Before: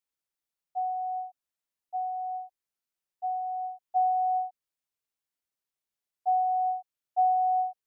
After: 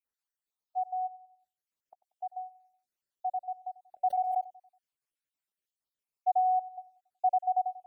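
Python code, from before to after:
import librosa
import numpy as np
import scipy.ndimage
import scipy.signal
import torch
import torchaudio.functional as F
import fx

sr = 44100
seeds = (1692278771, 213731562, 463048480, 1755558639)

y = fx.spec_dropout(x, sr, seeds[0], share_pct=58)
y = fx.gate_flip(y, sr, shuts_db=-42.0, range_db=-31, at=(1.06, 2.02), fade=0.02)
y = fx.echo_feedback(y, sr, ms=93, feedback_pct=46, wet_db=-19.0)
y = fx.pre_swell(y, sr, db_per_s=41.0, at=(4.07, 4.47))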